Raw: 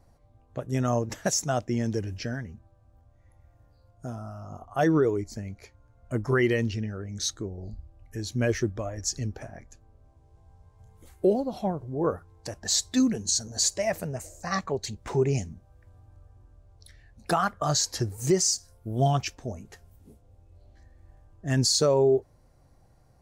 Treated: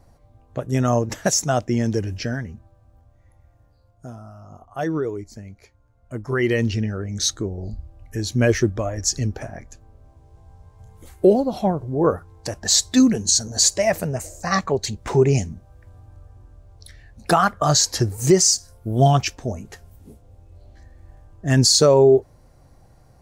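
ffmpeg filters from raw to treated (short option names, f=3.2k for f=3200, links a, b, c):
-af "volume=16.5dB,afade=t=out:st=2.51:d=1.73:silence=0.375837,afade=t=in:st=6.26:d=0.51:silence=0.316228"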